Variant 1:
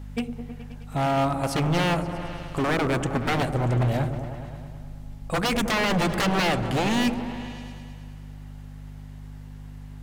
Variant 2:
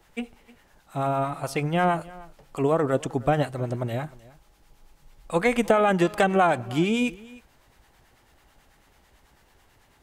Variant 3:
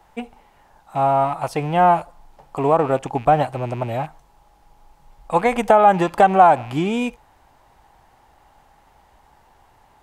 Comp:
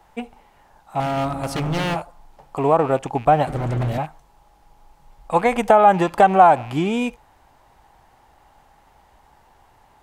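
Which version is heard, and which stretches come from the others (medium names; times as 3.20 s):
3
1.00–1.96 s: from 1
3.47–3.98 s: from 1
not used: 2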